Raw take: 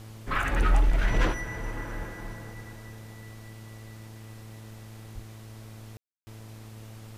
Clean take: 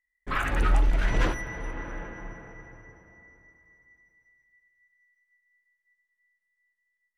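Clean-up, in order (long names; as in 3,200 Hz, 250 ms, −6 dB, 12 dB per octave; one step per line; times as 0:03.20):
hum removal 109.9 Hz, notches 12
0:01.98–0:02.10: high-pass filter 140 Hz 24 dB per octave
0:05.14–0:05.26: high-pass filter 140 Hz 24 dB per octave
ambience match 0:05.97–0:06.27
noise reduction from a noise print 30 dB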